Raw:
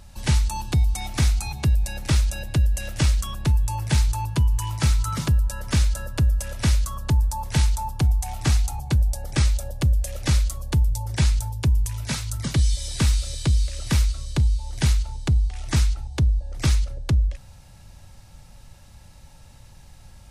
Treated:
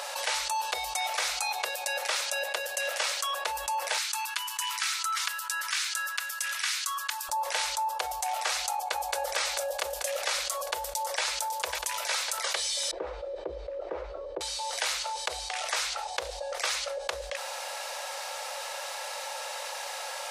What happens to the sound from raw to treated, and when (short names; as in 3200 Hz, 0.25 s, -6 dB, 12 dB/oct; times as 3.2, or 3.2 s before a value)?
1.63–3.42 HPF 180 Hz
3.98–7.29 HPF 1300 Hz 24 dB/oct
8.72–9.14 echo throw 0.22 s, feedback 60%, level -1 dB
10.42–11.23 echo throw 0.55 s, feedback 55%, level -13 dB
12.91–14.41 synth low-pass 330 Hz, resonance Q 3.5
15.9–16.58 Doppler distortion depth 0.31 ms
whole clip: elliptic high-pass 510 Hz, stop band 50 dB; high shelf 6700 Hz -6.5 dB; fast leveller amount 70%